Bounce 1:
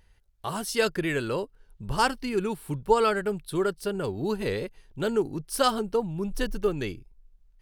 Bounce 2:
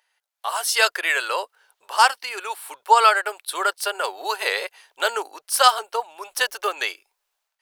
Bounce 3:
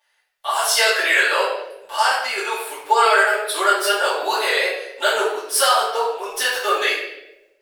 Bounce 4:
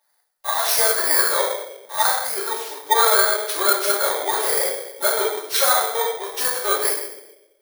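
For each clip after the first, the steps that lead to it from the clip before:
inverse Chebyshev high-pass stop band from 200 Hz, stop band 60 dB; AGC gain up to 14 dB
limiter -10.5 dBFS, peak gain reduction 9 dB; reverb RT60 0.95 s, pre-delay 4 ms, DRR -13.5 dB; gain -7 dB
FFT order left unsorted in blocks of 16 samples; gain -1 dB

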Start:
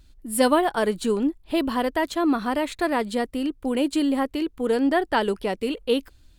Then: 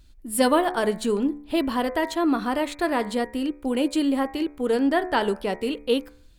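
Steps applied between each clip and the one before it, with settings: de-hum 72.89 Hz, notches 34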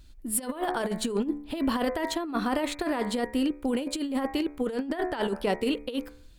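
negative-ratio compressor -25 dBFS, ratio -0.5; gain -2 dB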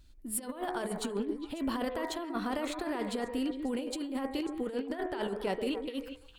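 delay with a stepping band-pass 0.136 s, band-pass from 410 Hz, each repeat 1.4 oct, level -4 dB; gain -6.5 dB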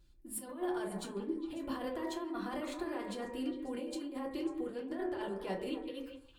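reverb RT60 0.35 s, pre-delay 3 ms, DRR -1 dB; gain -9 dB

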